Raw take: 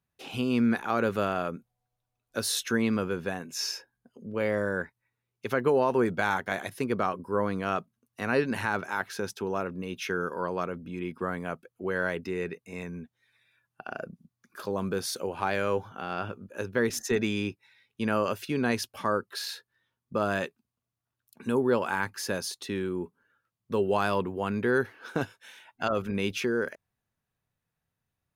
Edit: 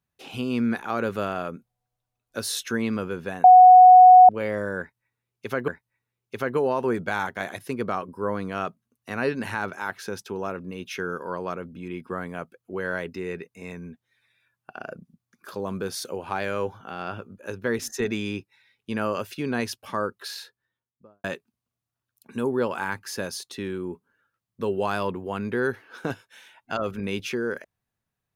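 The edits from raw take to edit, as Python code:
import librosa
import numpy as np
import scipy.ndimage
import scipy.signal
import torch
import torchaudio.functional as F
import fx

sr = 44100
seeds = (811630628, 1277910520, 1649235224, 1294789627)

y = fx.studio_fade_out(x, sr, start_s=19.34, length_s=1.01)
y = fx.edit(y, sr, fx.bleep(start_s=3.44, length_s=0.85, hz=736.0, db=-6.5),
    fx.repeat(start_s=4.79, length_s=0.89, count=2), tone=tone)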